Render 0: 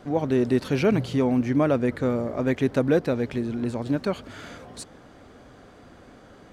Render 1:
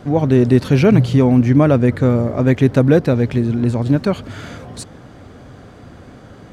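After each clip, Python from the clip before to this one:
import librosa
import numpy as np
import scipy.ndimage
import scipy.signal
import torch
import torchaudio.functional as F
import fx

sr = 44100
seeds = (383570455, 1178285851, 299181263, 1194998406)

y = fx.peak_eq(x, sr, hz=110.0, db=9.5, octaves=1.6)
y = y * librosa.db_to_amplitude(6.5)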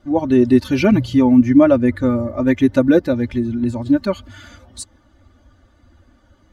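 y = fx.bin_expand(x, sr, power=1.5)
y = y + 0.82 * np.pad(y, (int(3.4 * sr / 1000.0), 0))[:len(y)]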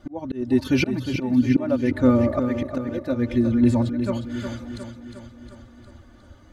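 y = fx.auto_swell(x, sr, attack_ms=697.0)
y = fx.echo_feedback(y, sr, ms=358, feedback_pct=57, wet_db=-8.5)
y = y * librosa.db_to_amplitude(2.5)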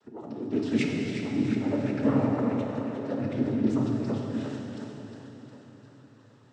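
y = fx.noise_vocoder(x, sr, seeds[0], bands=12)
y = fx.rev_plate(y, sr, seeds[1], rt60_s=3.2, hf_ratio=0.85, predelay_ms=0, drr_db=-0.5)
y = y * librosa.db_to_amplitude(-9.0)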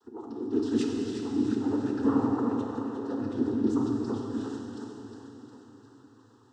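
y = fx.fixed_phaser(x, sr, hz=600.0, stages=6)
y = y * librosa.db_to_amplitude(2.0)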